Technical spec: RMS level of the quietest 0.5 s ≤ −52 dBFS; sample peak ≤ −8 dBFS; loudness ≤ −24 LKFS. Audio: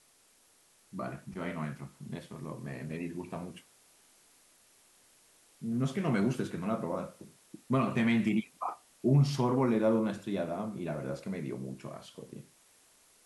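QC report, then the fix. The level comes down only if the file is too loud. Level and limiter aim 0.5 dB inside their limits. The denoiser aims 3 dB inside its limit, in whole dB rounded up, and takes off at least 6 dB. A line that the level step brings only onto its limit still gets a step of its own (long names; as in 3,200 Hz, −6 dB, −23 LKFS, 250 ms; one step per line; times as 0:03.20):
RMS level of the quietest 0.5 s −65 dBFS: in spec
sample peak −15.5 dBFS: in spec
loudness −33.0 LKFS: in spec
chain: no processing needed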